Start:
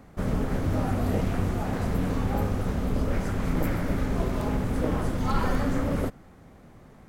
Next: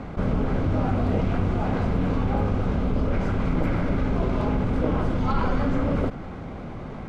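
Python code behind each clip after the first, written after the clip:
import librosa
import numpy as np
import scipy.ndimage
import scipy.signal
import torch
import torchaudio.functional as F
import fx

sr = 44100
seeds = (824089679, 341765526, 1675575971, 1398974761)

y = scipy.signal.sosfilt(scipy.signal.butter(2, 3500.0, 'lowpass', fs=sr, output='sos'), x)
y = fx.notch(y, sr, hz=1800.0, q=8.8)
y = fx.env_flatten(y, sr, amount_pct=50)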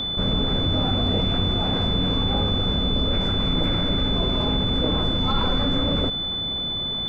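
y = x + 10.0 ** (-25.0 / 20.0) * np.sin(2.0 * np.pi * 3500.0 * np.arange(len(x)) / sr)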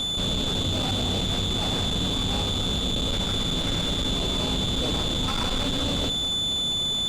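y = fx.tube_stage(x, sr, drive_db=27.0, bias=0.45)
y = y + 10.0 ** (-12.5 / 20.0) * np.pad(y, (int(206 * sr / 1000.0), 0))[:len(y)]
y = y * 10.0 ** (3.5 / 20.0)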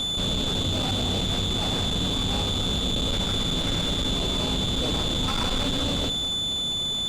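y = fx.rider(x, sr, range_db=10, speed_s=0.5)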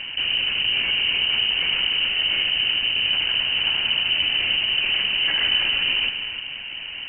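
y = fx.air_absorb(x, sr, metres=170.0)
y = y + 10.0 ** (-9.5 / 20.0) * np.pad(y, (int(301 * sr / 1000.0), 0))[:len(y)]
y = fx.freq_invert(y, sr, carrier_hz=3000)
y = y * 10.0 ** (4.0 / 20.0)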